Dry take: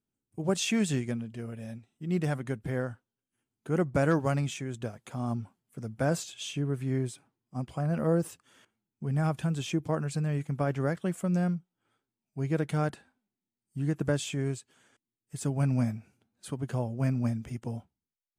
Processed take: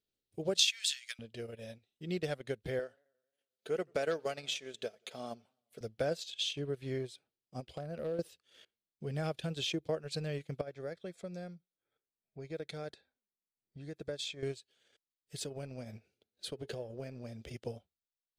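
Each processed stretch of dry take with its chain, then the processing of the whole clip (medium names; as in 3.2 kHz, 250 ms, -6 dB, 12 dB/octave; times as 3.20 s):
0.59–1.19 s: high-pass 1.3 kHz 24 dB/octave + treble shelf 2.1 kHz +12 dB
2.79–5.81 s: high-pass 380 Hz 6 dB/octave + comb 4.6 ms, depth 31% + modulated delay 88 ms, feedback 58%, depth 124 cents, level -23.5 dB
7.60–8.19 s: dynamic bell 3.5 kHz, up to -5 dB, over -54 dBFS, Q 0.9 + compression 3:1, threshold -34 dBFS + hard clipper -29 dBFS
10.61–14.43 s: level-controlled noise filter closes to 1.8 kHz, open at -25 dBFS + compression 2:1, threshold -42 dBFS + Butterworth band-stop 2.9 kHz, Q 6.4
15.43–17.54 s: peaking EQ 400 Hz +4.5 dB 0.88 oct + compression, threshold -32 dBFS + de-hum 424.3 Hz, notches 6
whole clip: ten-band graphic EQ 125 Hz -7 dB, 250 Hz -9 dB, 500 Hz +8 dB, 1 kHz -11 dB, 4 kHz +12 dB, 8 kHz -6 dB; transient shaper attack +2 dB, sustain -10 dB; compression 2:1, threshold -31 dBFS; trim -1.5 dB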